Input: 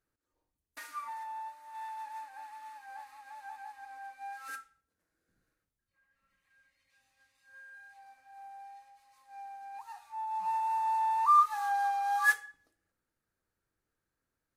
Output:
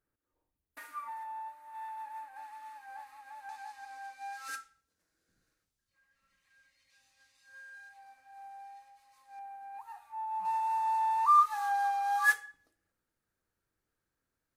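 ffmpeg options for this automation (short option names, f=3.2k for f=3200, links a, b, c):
-af "asetnsamples=n=441:p=0,asendcmd='2.36 equalizer g -3;3.49 equalizer g 8;7.89 equalizer g 0.5;9.39 equalizer g -10;10.45 equalizer g 0',equalizer=f=5.4k:t=o:w=1.7:g=-9.5"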